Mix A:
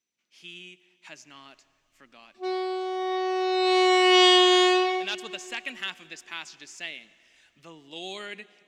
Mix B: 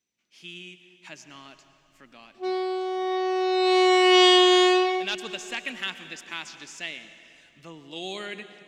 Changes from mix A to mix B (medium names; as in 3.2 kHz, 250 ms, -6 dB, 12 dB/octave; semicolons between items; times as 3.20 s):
speech: send +10.5 dB; master: add bass shelf 240 Hz +6.5 dB